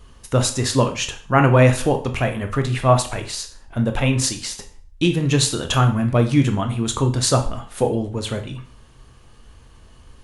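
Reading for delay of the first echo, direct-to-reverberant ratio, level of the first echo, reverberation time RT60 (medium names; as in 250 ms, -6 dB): no echo, 5.5 dB, no echo, 0.45 s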